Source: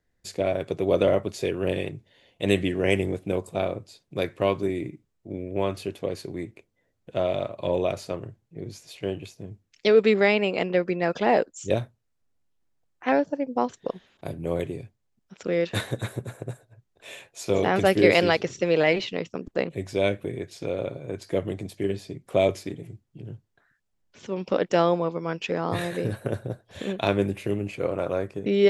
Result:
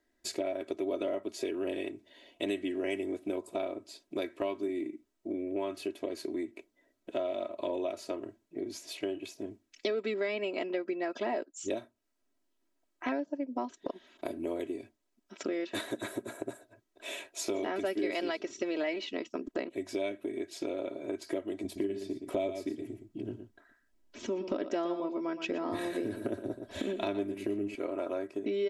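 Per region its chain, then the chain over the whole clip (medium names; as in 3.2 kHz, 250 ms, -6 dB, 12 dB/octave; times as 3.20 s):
21.64–27.75 s: bass shelf 210 Hz +11.5 dB + delay 117 ms -11 dB
whole clip: resonant low shelf 180 Hz -12 dB, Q 1.5; comb 3.1 ms, depth 73%; compression 4:1, threshold -33 dBFS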